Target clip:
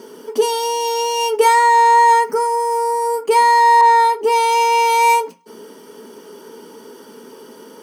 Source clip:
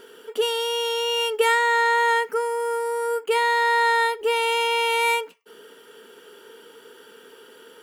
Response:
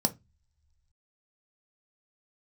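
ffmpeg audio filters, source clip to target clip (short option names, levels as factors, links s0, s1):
-filter_complex "[0:a]highshelf=f=5800:g=4[s0];[1:a]atrim=start_sample=2205,asetrate=48510,aresample=44100[s1];[s0][s1]afir=irnorm=-1:irlink=0,asettb=1/sr,asplit=3[s2][s3][s4];[s2]atrim=end=3.814[s5];[s3]atrim=start=3.81:end=4.32,asetpts=PTS-STARTPTS,afade=t=in:d=0.004:c=qsin,afade=t=out:st=0.506:d=0.004:c=qsin,adynamicequalizer=threshold=0.0398:dfrequency=3000:dqfactor=0.7:tfrequency=3000:tqfactor=0.7:attack=5:release=100:ratio=0.375:range=2:mode=cutabove:tftype=highshelf[s6];[s4]atrim=start=4.316[s7];[s5][s6]acrossfade=d=0.004:c1=hsin:c2=qsin[s8];[s8][s7]acrossfade=d=0.004:c1=qsin:c2=hsin"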